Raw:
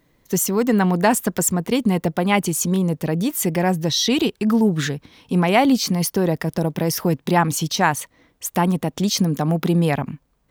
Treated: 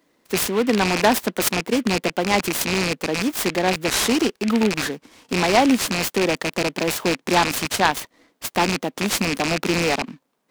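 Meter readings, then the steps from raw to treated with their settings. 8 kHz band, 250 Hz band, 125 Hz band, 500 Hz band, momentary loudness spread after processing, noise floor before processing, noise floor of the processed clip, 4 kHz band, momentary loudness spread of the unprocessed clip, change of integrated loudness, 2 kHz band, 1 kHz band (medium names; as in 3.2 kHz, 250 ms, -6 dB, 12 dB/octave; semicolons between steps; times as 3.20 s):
-1.5 dB, -3.5 dB, -8.5 dB, 0.0 dB, 7 LU, -64 dBFS, -69 dBFS, +2.0 dB, 7 LU, -1.0 dB, +4.0 dB, 0.0 dB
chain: rattle on loud lows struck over -22 dBFS, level -12 dBFS; high-pass 220 Hz 24 dB/octave; delay time shaken by noise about 2 kHz, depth 0.053 ms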